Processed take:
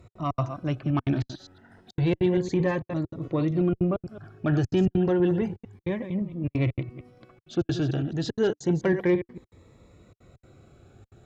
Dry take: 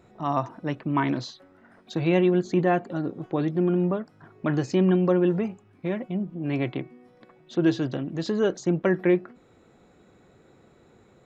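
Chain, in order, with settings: chunks repeated in reverse 113 ms, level -11 dB; trance gate "x.xx.xxxxxxx" 197 bpm -60 dB; resonant low shelf 140 Hz +8 dB, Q 1.5; Chebyshev shaper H 5 -27 dB, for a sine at -11 dBFS; Shepard-style phaser rising 0.3 Hz

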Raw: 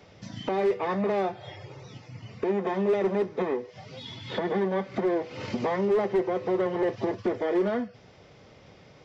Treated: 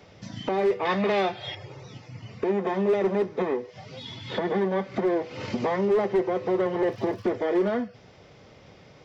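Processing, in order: 0.85–1.55 s: peaking EQ 3.3 kHz +11.5 dB 1.8 oct; 6.89–7.29 s: crackle 92 per s -47 dBFS; trim +1.5 dB

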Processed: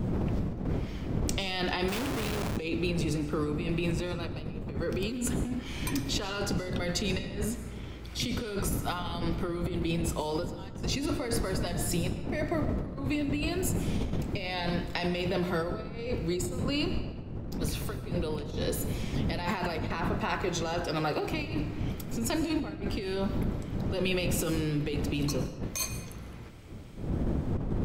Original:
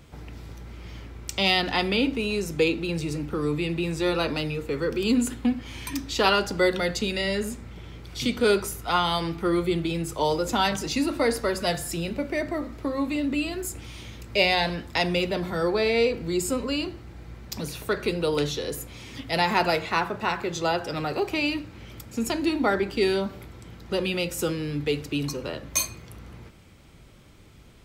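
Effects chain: wind noise 200 Hz -24 dBFS; compressor with a negative ratio -27 dBFS, ratio -1; algorithmic reverb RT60 1.1 s, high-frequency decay 0.8×, pre-delay 75 ms, DRR 11.5 dB; 1.88–2.57 s: Schmitt trigger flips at -37.5 dBFS; trim -5 dB

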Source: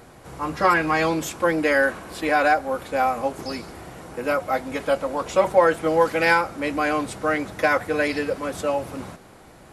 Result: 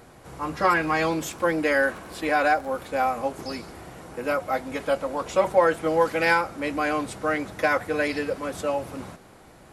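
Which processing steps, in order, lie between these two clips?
0.68–3.00 s: crackle 30 per s -33 dBFS; trim -2.5 dB

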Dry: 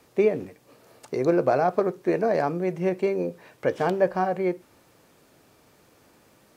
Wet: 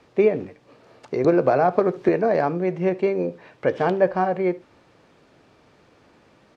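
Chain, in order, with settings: low-pass 4.1 kHz 12 dB/octave; delay 73 ms -22.5 dB; 1.24–2.09 s: three bands compressed up and down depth 100%; trim +3 dB

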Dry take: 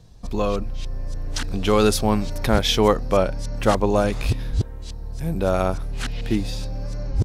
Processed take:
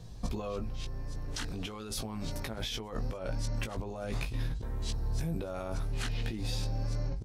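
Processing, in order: compressor with a negative ratio -29 dBFS, ratio -1; doubling 18 ms -6 dB; trim -5.5 dB

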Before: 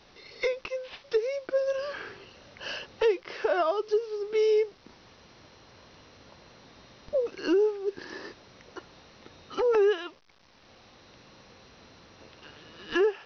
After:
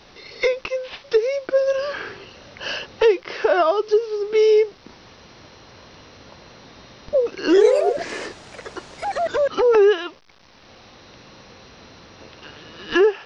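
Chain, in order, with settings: 7.38–9.74 s: ever faster or slower copies 112 ms, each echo +3 st, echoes 3; trim +8.5 dB

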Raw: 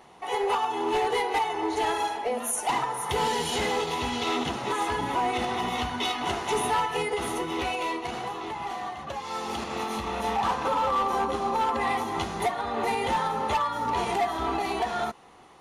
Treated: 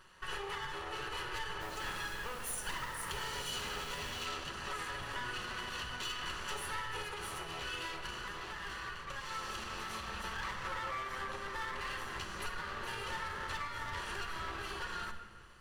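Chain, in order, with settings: comb filter that takes the minimum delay 0.67 ms; treble shelf 12 kHz -3.5 dB; compression, threshold -32 dBFS, peak gain reduction 8.5 dB; peaking EQ 240 Hz -14 dB 1.5 oct; simulated room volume 1500 m³, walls mixed, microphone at 1 m; 1.60–4.24 s: added noise pink -47 dBFS; trim -4.5 dB

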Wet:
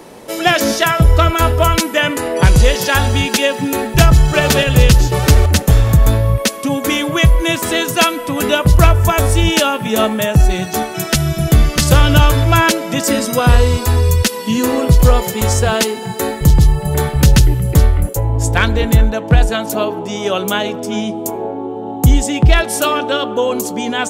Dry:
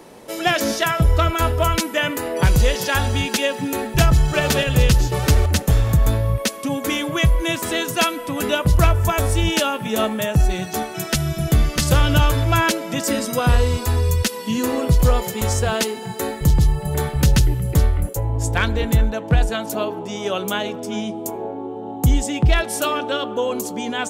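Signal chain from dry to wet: 2.01–2.64 s: steep low-pass 12 kHz 48 dB/octave; trim +6 dB

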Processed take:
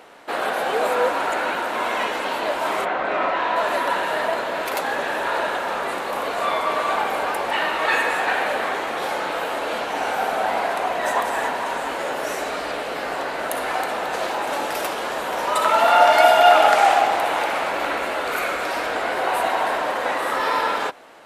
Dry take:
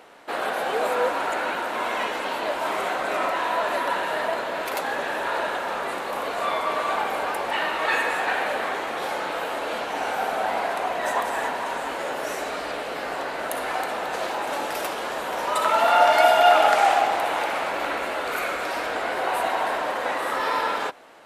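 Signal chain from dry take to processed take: 2.84–3.55 s: low-pass 2.4 kHz -> 4.5 kHz 12 dB/octave; trim +3 dB

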